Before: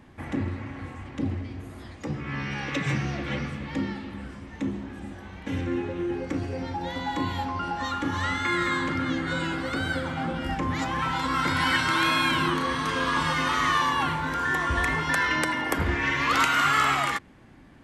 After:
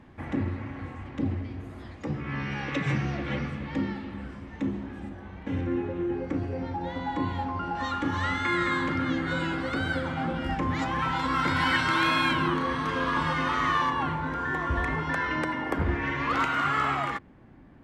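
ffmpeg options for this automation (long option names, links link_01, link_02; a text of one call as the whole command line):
ffmpeg -i in.wav -af "asetnsamples=nb_out_samples=441:pad=0,asendcmd='5.09 lowpass f 1400;7.75 lowpass f 3500;12.33 lowpass f 1800;13.9 lowpass f 1100',lowpass=frequency=2800:poles=1" out.wav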